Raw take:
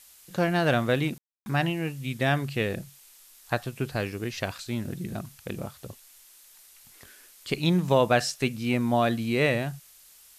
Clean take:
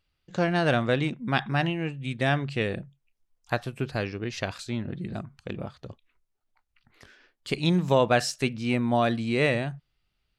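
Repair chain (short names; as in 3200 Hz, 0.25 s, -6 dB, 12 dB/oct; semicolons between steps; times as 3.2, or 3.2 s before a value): room tone fill 1.18–1.46; denoiser 21 dB, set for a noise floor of -54 dBFS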